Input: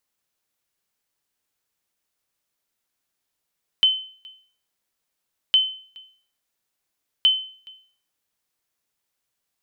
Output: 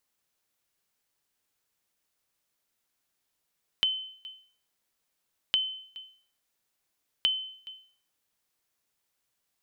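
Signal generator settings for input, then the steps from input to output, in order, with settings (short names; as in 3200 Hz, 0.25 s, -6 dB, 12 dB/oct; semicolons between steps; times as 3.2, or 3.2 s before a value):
sonar ping 3060 Hz, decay 0.47 s, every 1.71 s, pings 3, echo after 0.42 s, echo -26.5 dB -9.5 dBFS
compressor 4:1, threshold -26 dBFS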